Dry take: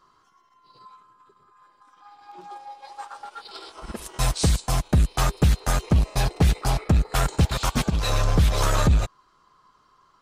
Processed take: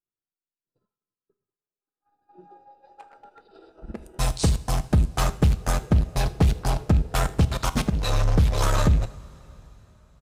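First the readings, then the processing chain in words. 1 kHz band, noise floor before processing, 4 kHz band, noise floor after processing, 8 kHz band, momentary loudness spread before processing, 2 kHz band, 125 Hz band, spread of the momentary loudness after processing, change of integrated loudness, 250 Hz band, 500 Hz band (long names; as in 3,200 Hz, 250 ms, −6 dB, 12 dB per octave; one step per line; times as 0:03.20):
−2.0 dB, −62 dBFS, −3.5 dB, below −85 dBFS, −3.0 dB, 18 LU, −2.5 dB, −0.5 dB, 7 LU, −1.0 dB, 0.0 dB, −0.5 dB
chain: adaptive Wiener filter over 41 samples
single-tap delay 79 ms −22.5 dB
downward expander −52 dBFS
coupled-rooms reverb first 0.4 s, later 4.2 s, from −18 dB, DRR 12.5 dB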